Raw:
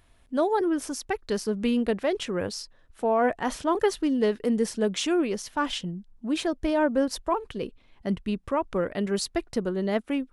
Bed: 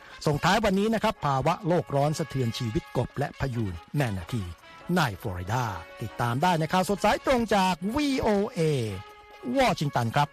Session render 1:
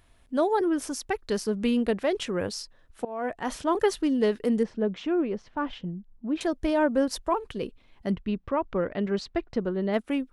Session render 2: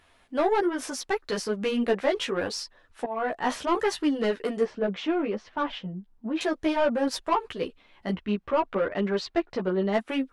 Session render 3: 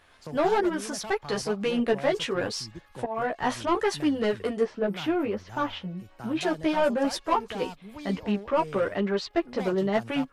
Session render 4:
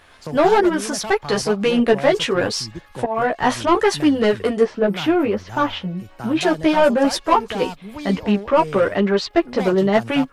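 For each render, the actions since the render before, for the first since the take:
3.05–3.88 fade in equal-power, from -20.5 dB; 4.63–6.41 tape spacing loss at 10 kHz 37 dB; 8.11–9.94 air absorption 190 m
overdrive pedal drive 16 dB, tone 3400 Hz, clips at -11.5 dBFS; chorus voices 2, 0.72 Hz, delay 13 ms, depth 3.1 ms
add bed -15.5 dB
gain +9 dB

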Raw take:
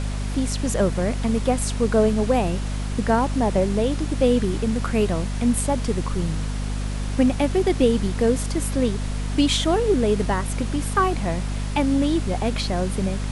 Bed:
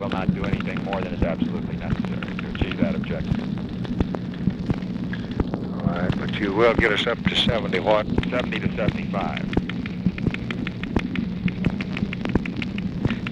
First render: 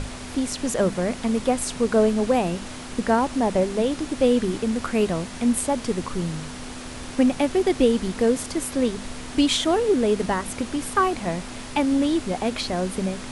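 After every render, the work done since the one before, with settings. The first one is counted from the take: notches 50/100/150/200 Hz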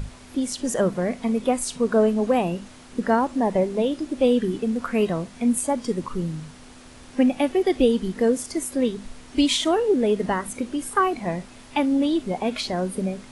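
noise print and reduce 10 dB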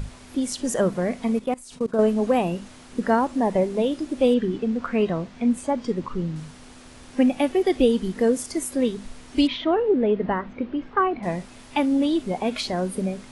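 1.39–1.99 level quantiser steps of 22 dB; 4.34–6.36 air absorption 100 m; 9.47–11.23 Gaussian blur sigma 2.8 samples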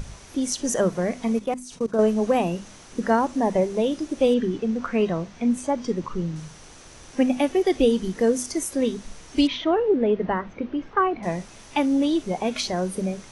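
bell 6000 Hz +10 dB 0.23 oct; notches 50/100/150/200/250 Hz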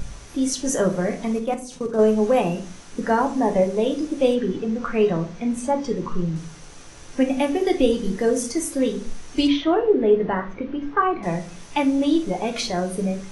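shoebox room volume 31 m³, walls mixed, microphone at 0.32 m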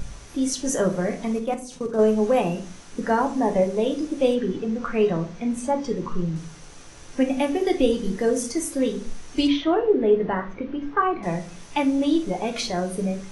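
gain -1.5 dB

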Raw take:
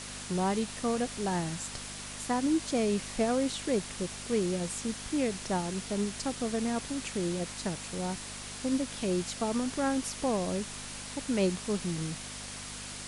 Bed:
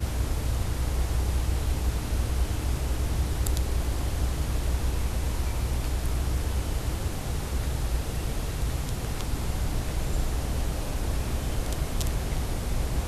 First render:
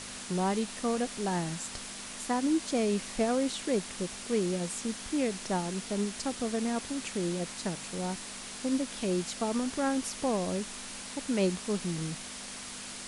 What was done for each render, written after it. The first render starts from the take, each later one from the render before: de-hum 50 Hz, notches 3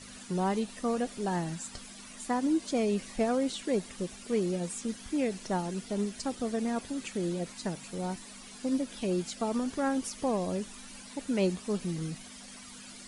denoiser 12 dB, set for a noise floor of -43 dBFS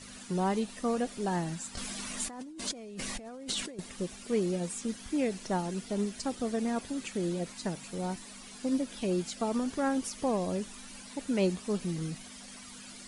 1.77–3.79 negative-ratio compressor -40 dBFS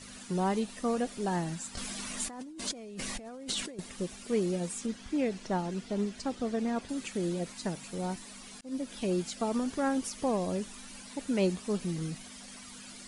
4.86–6.89 air absorption 64 m; 8.61–9.04 fade in equal-power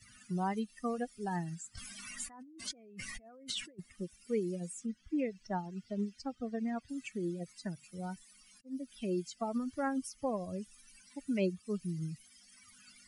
per-bin expansion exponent 2; three-band squash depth 40%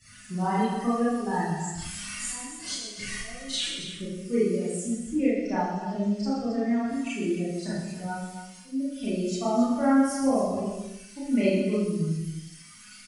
on a send: tapped delay 0.125/0.271 s -9/-10.5 dB; on the sum: Schroeder reverb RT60 0.75 s, combs from 26 ms, DRR -9.5 dB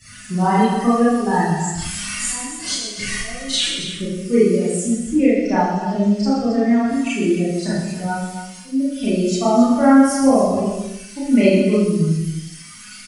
gain +10 dB; limiter -3 dBFS, peak gain reduction 1.5 dB

